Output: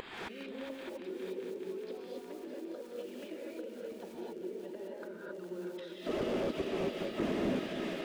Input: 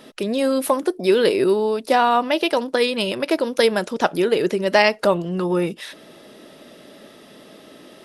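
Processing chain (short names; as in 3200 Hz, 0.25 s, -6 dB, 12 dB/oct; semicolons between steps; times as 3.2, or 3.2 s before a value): bin magnitudes rounded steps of 15 dB; reverb removal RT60 1 s; treble ducked by the level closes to 360 Hz, closed at -16 dBFS; weighting filter D; low-pass opened by the level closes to 1900 Hz, open at -21 dBFS; bell 330 Hz +8.5 dB 1.2 oct; upward compressor, threshold -23 dBFS; flipped gate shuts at -24 dBFS, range -35 dB; multi-head echo 0.204 s, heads second and third, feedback 58%, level -10.5 dB; crackle 16/s -41 dBFS; non-linear reverb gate 0.29 s rising, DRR -4 dB; slew limiter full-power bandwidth 9.5 Hz; gain +4.5 dB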